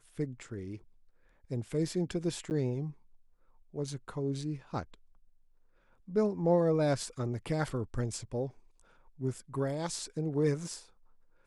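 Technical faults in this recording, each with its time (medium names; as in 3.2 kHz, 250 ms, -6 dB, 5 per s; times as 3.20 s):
2.50–2.51 s: dropout 9.4 ms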